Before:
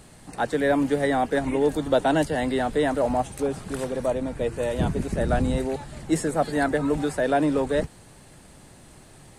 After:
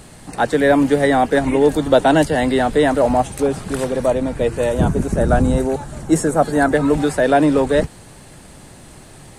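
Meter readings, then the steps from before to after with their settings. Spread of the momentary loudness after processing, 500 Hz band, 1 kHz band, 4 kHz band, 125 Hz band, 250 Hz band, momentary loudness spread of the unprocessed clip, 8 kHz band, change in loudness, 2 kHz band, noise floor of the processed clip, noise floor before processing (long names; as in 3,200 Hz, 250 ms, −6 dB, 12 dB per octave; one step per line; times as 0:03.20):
7 LU, +8.0 dB, +8.0 dB, +7.5 dB, +8.0 dB, +8.0 dB, 7 LU, +8.0 dB, +8.0 dB, +8.0 dB, −42 dBFS, −50 dBFS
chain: gain on a spectral selection 0:04.70–0:06.72, 1,700–5,400 Hz −6 dB
level +8 dB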